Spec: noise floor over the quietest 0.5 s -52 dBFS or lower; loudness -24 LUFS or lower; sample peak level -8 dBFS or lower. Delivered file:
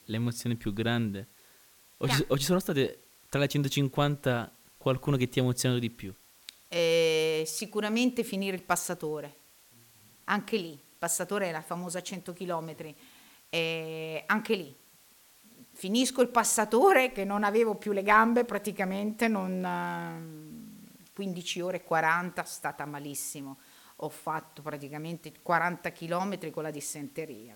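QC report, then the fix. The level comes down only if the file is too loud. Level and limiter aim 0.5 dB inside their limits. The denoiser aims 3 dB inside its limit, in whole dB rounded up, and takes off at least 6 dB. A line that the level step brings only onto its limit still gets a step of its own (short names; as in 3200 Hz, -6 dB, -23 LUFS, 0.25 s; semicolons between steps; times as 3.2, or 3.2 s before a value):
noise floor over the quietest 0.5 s -60 dBFS: OK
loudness -29.5 LUFS: OK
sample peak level -9.0 dBFS: OK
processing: none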